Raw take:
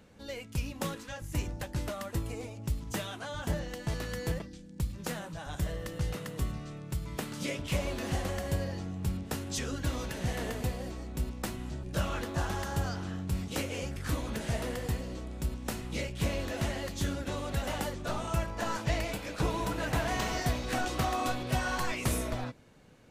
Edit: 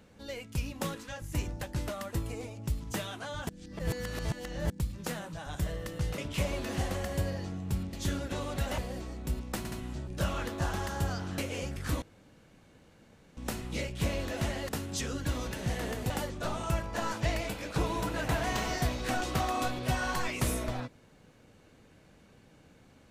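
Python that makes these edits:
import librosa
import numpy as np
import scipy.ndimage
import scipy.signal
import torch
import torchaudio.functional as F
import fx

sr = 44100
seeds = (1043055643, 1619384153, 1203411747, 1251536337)

y = fx.edit(x, sr, fx.reverse_span(start_s=3.49, length_s=1.21),
    fx.cut(start_s=6.18, length_s=1.34),
    fx.swap(start_s=9.27, length_s=1.41, other_s=16.89, other_length_s=0.85),
    fx.stutter(start_s=11.48, slice_s=0.07, count=3),
    fx.cut(start_s=13.14, length_s=0.44),
    fx.room_tone_fill(start_s=14.22, length_s=1.35), tone=tone)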